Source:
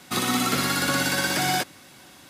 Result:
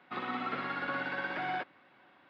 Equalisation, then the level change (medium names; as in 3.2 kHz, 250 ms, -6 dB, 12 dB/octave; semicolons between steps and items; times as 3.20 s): high-pass 1.4 kHz 6 dB/octave; distance through air 440 m; tape spacing loss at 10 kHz 30 dB; +1.5 dB